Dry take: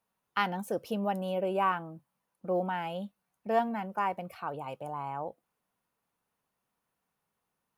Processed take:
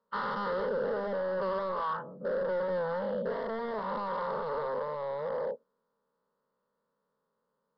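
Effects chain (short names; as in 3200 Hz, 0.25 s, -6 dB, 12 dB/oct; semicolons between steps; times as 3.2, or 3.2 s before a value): spectral dilation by 0.48 s; bell 490 Hz +13 dB 1.9 oct; compressor 5:1, threshold -16 dBFS, peak gain reduction 8 dB; hard clip -20 dBFS, distortion -10 dB; fixed phaser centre 490 Hz, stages 8; downsampling 11025 Hz; gain -7 dB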